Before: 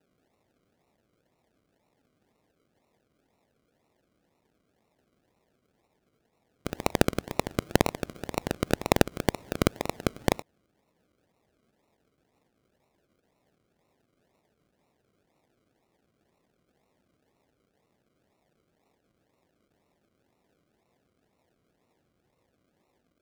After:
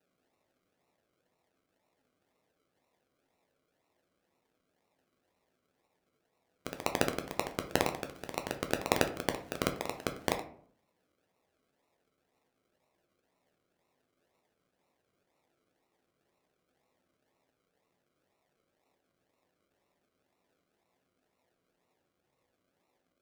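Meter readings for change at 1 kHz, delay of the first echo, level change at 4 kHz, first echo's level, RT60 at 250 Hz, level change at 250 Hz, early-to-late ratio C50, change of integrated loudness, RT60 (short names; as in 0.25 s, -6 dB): -4.0 dB, none, -3.5 dB, none, 0.70 s, -8.5 dB, 11.5 dB, -5.5 dB, 0.60 s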